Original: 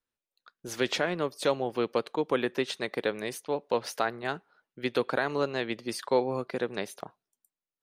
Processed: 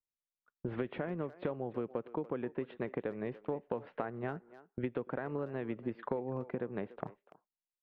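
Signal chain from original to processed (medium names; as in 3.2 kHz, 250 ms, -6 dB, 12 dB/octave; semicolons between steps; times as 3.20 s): Bessel low-pass 1.6 kHz, order 8; gate -53 dBFS, range -22 dB; bass shelf 320 Hz +11 dB; compression 16:1, threshold -34 dBFS, peak gain reduction 18.5 dB; speakerphone echo 290 ms, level -16 dB; trim +1.5 dB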